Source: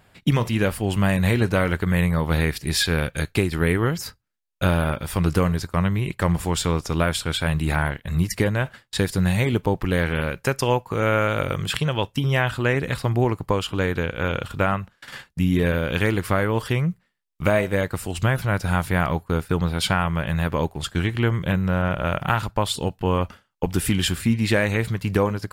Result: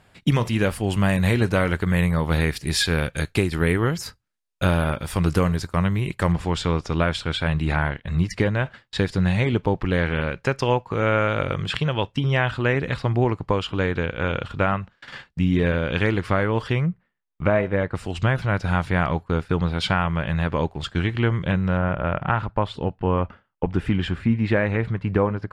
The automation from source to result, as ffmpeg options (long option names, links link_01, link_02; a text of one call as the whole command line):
ffmpeg -i in.wav -af "asetnsamples=nb_out_samples=441:pad=0,asendcmd='6.32 lowpass f 4500;16.86 lowpass f 2100;17.95 lowpass f 4600;21.77 lowpass f 2000',lowpass=11000" out.wav